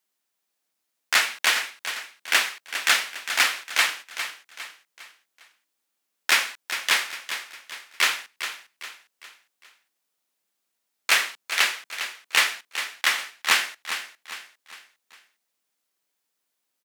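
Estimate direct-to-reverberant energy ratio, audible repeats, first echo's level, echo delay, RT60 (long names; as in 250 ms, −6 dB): no reverb audible, 4, −10.0 dB, 405 ms, no reverb audible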